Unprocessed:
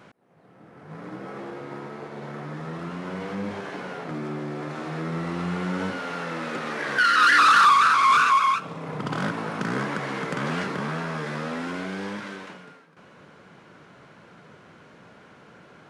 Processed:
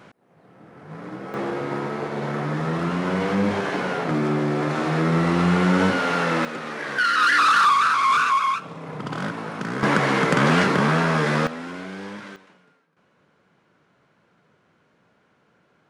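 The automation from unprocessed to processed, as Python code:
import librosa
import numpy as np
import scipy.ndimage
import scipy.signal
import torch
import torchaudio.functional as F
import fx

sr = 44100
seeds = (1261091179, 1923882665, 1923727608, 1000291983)

y = fx.gain(x, sr, db=fx.steps((0.0, 2.5), (1.34, 9.5), (6.45, -1.0), (9.83, 10.0), (11.47, -2.5), (12.36, -12.5)))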